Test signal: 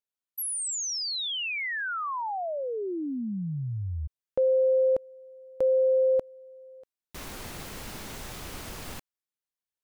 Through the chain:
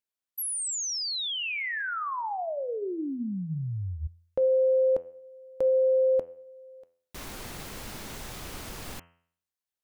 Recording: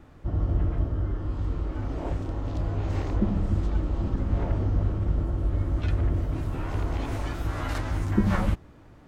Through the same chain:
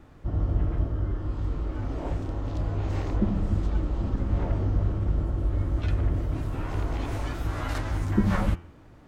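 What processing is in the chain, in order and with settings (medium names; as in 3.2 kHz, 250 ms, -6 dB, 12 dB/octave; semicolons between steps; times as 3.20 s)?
de-hum 85.19 Hz, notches 37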